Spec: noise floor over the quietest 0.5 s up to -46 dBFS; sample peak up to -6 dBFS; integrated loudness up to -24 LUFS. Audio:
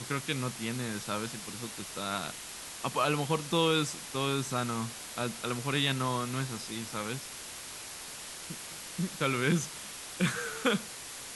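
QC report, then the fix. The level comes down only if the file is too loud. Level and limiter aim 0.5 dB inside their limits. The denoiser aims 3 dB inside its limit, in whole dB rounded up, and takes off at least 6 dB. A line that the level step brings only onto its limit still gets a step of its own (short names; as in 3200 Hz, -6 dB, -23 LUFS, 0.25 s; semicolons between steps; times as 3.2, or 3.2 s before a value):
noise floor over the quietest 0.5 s -44 dBFS: fail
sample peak -14.5 dBFS: OK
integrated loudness -33.0 LUFS: OK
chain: denoiser 6 dB, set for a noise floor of -44 dBFS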